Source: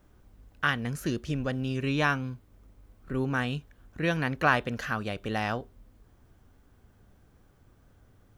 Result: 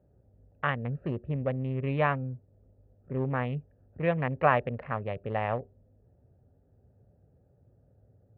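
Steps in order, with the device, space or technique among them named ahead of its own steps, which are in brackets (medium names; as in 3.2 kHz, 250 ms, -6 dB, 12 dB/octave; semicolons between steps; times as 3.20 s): local Wiener filter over 41 samples; bass cabinet (cabinet simulation 65–2200 Hz, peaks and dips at 72 Hz -7 dB, 210 Hz -8 dB, 310 Hz -10 dB, 570 Hz +5 dB, 1.5 kHz -10 dB); trim +2.5 dB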